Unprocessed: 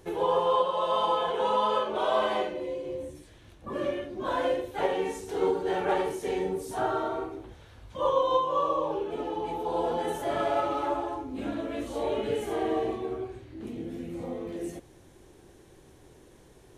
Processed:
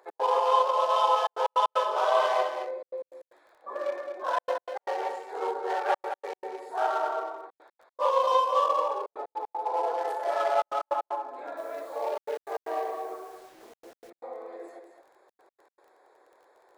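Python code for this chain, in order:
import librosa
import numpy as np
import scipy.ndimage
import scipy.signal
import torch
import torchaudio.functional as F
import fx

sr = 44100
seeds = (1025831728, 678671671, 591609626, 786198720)

y = fx.wiener(x, sr, points=15)
y = scipy.signal.sosfilt(scipy.signal.butter(4, 580.0, 'highpass', fs=sr, output='sos'), y)
y = y + 10.0 ** (-8.0 / 20.0) * np.pad(y, (int(218 * sr / 1000.0), 0))[:len(y)]
y = fx.dmg_crackle(y, sr, seeds[0], per_s=29.0, level_db=-55.0)
y = fx.step_gate(y, sr, bpm=154, pattern='x.xxxxxxxxxxx.x.', floor_db=-60.0, edge_ms=4.5)
y = fx.quant_dither(y, sr, seeds[1], bits=10, dither='none', at=(11.57, 14.1))
y = y * 10.0 ** (4.0 / 20.0)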